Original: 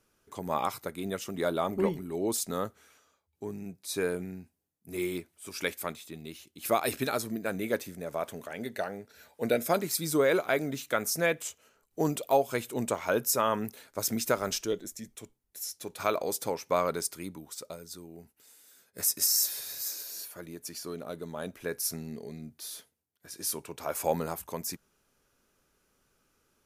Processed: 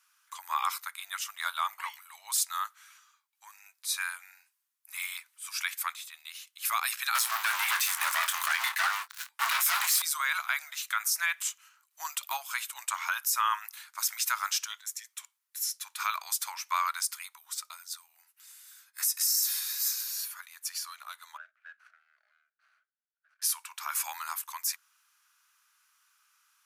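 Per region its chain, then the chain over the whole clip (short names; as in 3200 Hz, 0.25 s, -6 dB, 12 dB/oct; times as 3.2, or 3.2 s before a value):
7.15–10.02 bell 160 Hz +9 dB 1.3 oct + sample leveller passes 5 + doubler 24 ms -11 dB
21.37–23.42 median filter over 25 samples + double band-pass 960 Hz, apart 1.3 oct
whole clip: steep high-pass 1000 Hz 48 dB/oct; limiter -22.5 dBFS; gain +5.5 dB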